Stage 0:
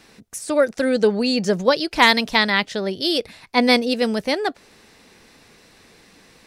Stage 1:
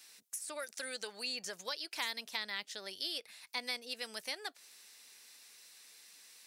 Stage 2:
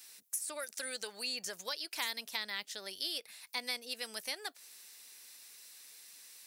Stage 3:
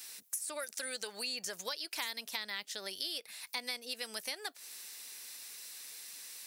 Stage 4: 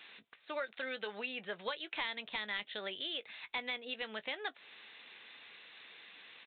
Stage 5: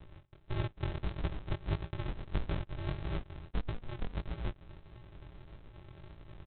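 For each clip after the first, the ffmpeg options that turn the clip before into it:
ffmpeg -i in.wav -filter_complex "[0:a]aderivative,acrossover=split=600|2500[link_01][link_02][link_03];[link_01]acompressor=threshold=-51dB:ratio=4[link_04];[link_02]acompressor=threshold=-42dB:ratio=4[link_05];[link_03]acompressor=threshold=-42dB:ratio=4[link_06];[link_04][link_05][link_06]amix=inputs=3:normalize=0" out.wav
ffmpeg -i in.wav -af "highshelf=frequency=11000:gain=12" out.wav
ffmpeg -i in.wav -af "acompressor=threshold=-47dB:ratio=2,volume=6.5dB" out.wav
ffmpeg -i in.wav -filter_complex "[0:a]aresample=8000,asoftclip=type=hard:threshold=-31.5dB,aresample=44100,asplit=2[link_01][link_02];[link_02]adelay=19,volume=-14dB[link_03];[link_01][link_03]amix=inputs=2:normalize=0,volume=3dB" out.wav
ffmpeg -i in.wav -af "aresample=8000,acrusher=samples=33:mix=1:aa=0.000001,aresample=44100,flanger=delay=17.5:depth=6.5:speed=1.6,volume=8.5dB" out.wav

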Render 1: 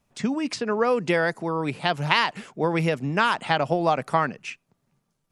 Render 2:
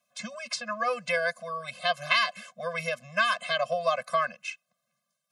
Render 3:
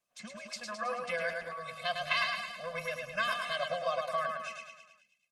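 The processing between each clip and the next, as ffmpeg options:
ffmpeg -i in.wav -af "highpass=360,tiltshelf=frequency=1100:gain=-3.5,afftfilt=real='re*eq(mod(floor(b*sr/1024/250),2),0)':imag='im*eq(mod(floor(b*sr/1024/250),2),0)':win_size=1024:overlap=0.75" out.wav
ffmpeg -i in.wav -filter_complex "[0:a]asplit=2[link_01][link_02];[link_02]aecho=0:1:107|214|321|428|535|642|749:0.631|0.347|0.191|0.105|0.0577|0.0318|0.0175[link_03];[link_01][link_03]amix=inputs=2:normalize=0,volume=-7.5dB" -ar 48000 -c:a libopus -b:a 20k out.opus

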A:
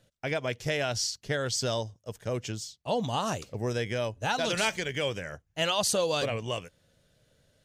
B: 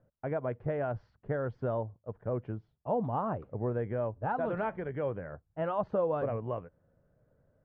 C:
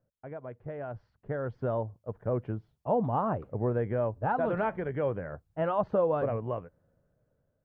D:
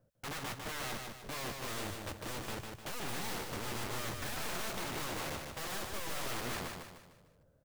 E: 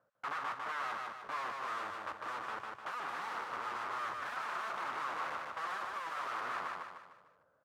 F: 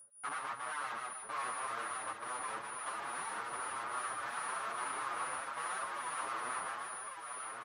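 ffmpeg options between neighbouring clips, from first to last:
ffmpeg -i in.wav -af "lowpass=frequency=1300:width=0.5412,lowpass=frequency=1300:width=1.3066,volume=-1.5dB" out.wav
ffmpeg -i in.wav -af "dynaudnorm=framelen=550:gausssize=5:maxgain=12dB,volume=-8.5dB" out.wav
ffmpeg -i in.wav -filter_complex "[0:a]aeval=exprs='(tanh(79.4*val(0)+0.4)-tanh(0.4))/79.4':channel_layout=same,aeval=exprs='(mod(141*val(0)+1,2)-1)/141':channel_layout=same,asplit=2[link_01][link_02];[link_02]aecho=0:1:151|302|453|604|755:0.596|0.25|0.105|0.0441|0.0185[link_03];[link_01][link_03]amix=inputs=2:normalize=0,volume=6.5dB" out.wav
ffmpeg -i in.wav -af "asoftclip=type=tanh:threshold=-37.5dB,bandpass=frequency=1200:width_type=q:width=2.7:csg=0,volume=12dB" out.wav
ffmpeg -i in.wav -filter_complex "[0:a]aeval=exprs='val(0)+0.00316*sin(2*PI*9700*n/s)':channel_layout=same,aecho=1:1:1106:0.562,asplit=2[link_01][link_02];[link_02]adelay=7.1,afreqshift=2.4[link_03];[link_01][link_03]amix=inputs=2:normalize=1,volume=1.5dB" out.wav

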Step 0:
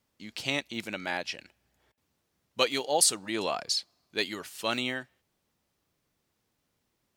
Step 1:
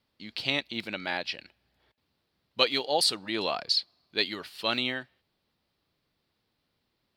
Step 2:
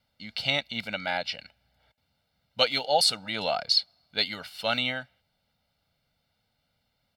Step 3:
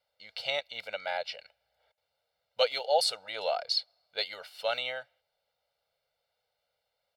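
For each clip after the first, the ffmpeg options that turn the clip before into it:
ffmpeg -i in.wav -af "highshelf=frequency=5400:width_type=q:width=3:gain=-7" out.wav
ffmpeg -i in.wav -af "aecho=1:1:1.4:0.83" out.wav
ffmpeg -i in.wav -af "lowshelf=frequency=350:width_type=q:width=3:gain=-12,volume=-6.5dB" out.wav

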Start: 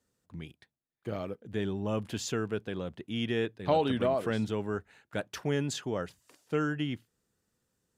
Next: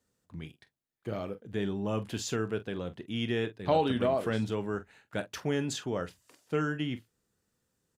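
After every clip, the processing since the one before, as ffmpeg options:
ffmpeg -i in.wav -af "aecho=1:1:25|45:0.168|0.188" out.wav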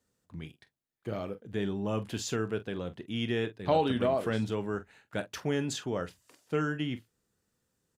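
ffmpeg -i in.wav -af anull out.wav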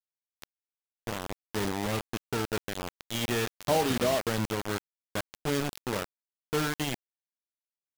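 ffmpeg -i in.wav -af "aresample=11025,aresample=44100,deesser=0.95,acrusher=bits=4:mix=0:aa=0.000001" out.wav

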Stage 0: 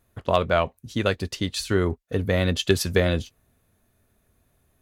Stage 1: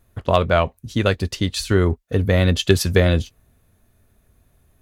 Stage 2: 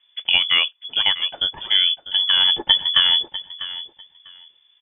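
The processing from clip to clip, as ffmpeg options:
ffmpeg -i in.wav -af "lowshelf=frequency=100:gain=8,volume=3.5dB" out.wav
ffmpeg -i in.wav -af "aecho=1:1:647|1294:0.188|0.0339,lowpass=frequency=3000:width_type=q:width=0.5098,lowpass=frequency=3000:width_type=q:width=0.6013,lowpass=frequency=3000:width_type=q:width=0.9,lowpass=frequency=3000:width_type=q:width=2.563,afreqshift=-3500,volume=-1dB" out.wav

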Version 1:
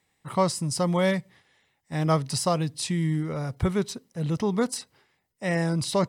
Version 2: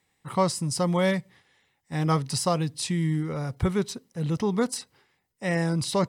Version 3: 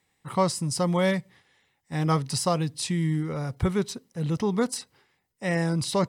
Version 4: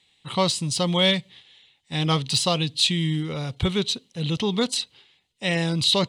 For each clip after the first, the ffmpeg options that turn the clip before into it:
ffmpeg -i in.wav -af "bandreject=frequency=630:width=12" out.wav
ffmpeg -i in.wav -af anull out.wav
ffmpeg -i in.wav -af "lowpass=frequency=4500:width_type=q:width=1.8,highshelf=frequency=2200:width_type=q:width=1.5:gain=7.5,aexciter=amount=1.2:drive=3.8:freq=2800,volume=1dB" out.wav

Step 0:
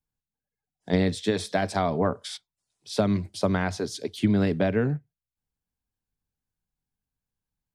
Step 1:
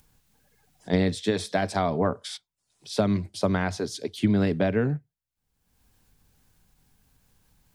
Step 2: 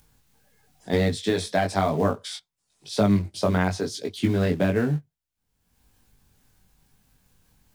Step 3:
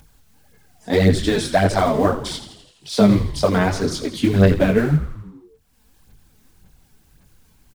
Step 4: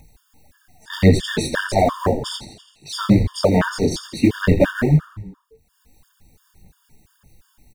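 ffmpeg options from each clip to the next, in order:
ffmpeg -i in.wav -af "acompressor=mode=upward:threshold=-43dB:ratio=2.5" out.wav
ffmpeg -i in.wav -filter_complex "[0:a]asplit=2[link_01][link_02];[link_02]acrusher=bits=3:mode=log:mix=0:aa=0.000001,volume=-10.5dB[link_03];[link_01][link_03]amix=inputs=2:normalize=0,flanger=delay=19.5:depth=3:speed=1,volume=2.5dB" out.wav
ffmpeg -i in.wav -filter_complex "[0:a]aphaser=in_gain=1:out_gain=1:delay=4.7:decay=0.6:speed=1.8:type=sinusoidal,asplit=8[link_01][link_02][link_03][link_04][link_05][link_06][link_07][link_08];[link_02]adelay=83,afreqshift=-85,volume=-11.5dB[link_09];[link_03]adelay=166,afreqshift=-170,volume=-15.8dB[link_10];[link_04]adelay=249,afreqshift=-255,volume=-20.1dB[link_11];[link_05]adelay=332,afreqshift=-340,volume=-24.4dB[link_12];[link_06]adelay=415,afreqshift=-425,volume=-28.7dB[link_13];[link_07]adelay=498,afreqshift=-510,volume=-33dB[link_14];[link_08]adelay=581,afreqshift=-595,volume=-37.3dB[link_15];[link_01][link_09][link_10][link_11][link_12][link_13][link_14][link_15]amix=inputs=8:normalize=0,volume=3.5dB" out.wav
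ffmpeg -i in.wav -af "afftfilt=real='re*gt(sin(2*PI*2.9*pts/sr)*(1-2*mod(floor(b*sr/1024/920),2)),0)':imag='im*gt(sin(2*PI*2.9*pts/sr)*(1-2*mod(floor(b*sr/1024/920),2)),0)':win_size=1024:overlap=0.75,volume=3dB" out.wav

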